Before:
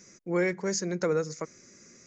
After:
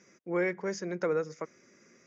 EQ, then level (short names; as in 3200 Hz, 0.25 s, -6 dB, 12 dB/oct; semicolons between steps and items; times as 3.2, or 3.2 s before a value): HPF 320 Hz 6 dB/oct; air absorption 180 m; notch 4200 Hz, Q 5.3; 0.0 dB